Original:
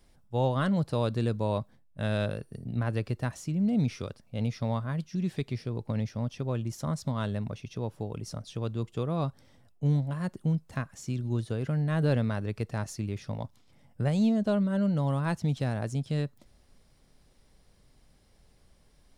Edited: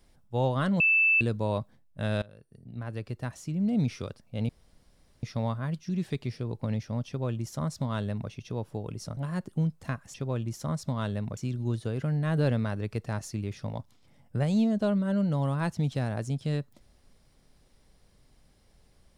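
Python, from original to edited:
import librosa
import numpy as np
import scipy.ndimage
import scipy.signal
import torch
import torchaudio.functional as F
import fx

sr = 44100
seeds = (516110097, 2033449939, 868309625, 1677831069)

y = fx.edit(x, sr, fx.bleep(start_s=0.8, length_s=0.41, hz=2640.0, db=-19.0),
    fx.fade_in_from(start_s=2.22, length_s=1.57, floor_db=-24.0),
    fx.insert_room_tone(at_s=4.49, length_s=0.74),
    fx.duplicate(start_s=6.33, length_s=1.23, to_s=11.02),
    fx.cut(start_s=8.43, length_s=1.62), tone=tone)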